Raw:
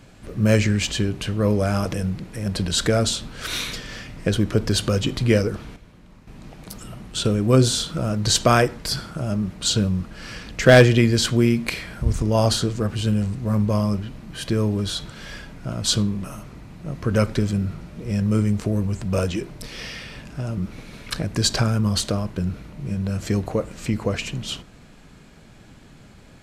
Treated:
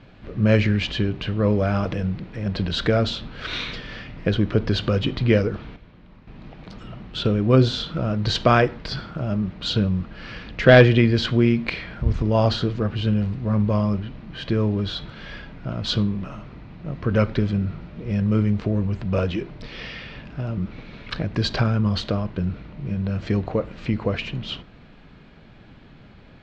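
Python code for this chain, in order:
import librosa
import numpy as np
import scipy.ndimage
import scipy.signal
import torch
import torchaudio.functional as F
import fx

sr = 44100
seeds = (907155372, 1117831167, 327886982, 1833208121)

y = scipy.signal.sosfilt(scipy.signal.butter(4, 4000.0, 'lowpass', fs=sr, output='sos'), x)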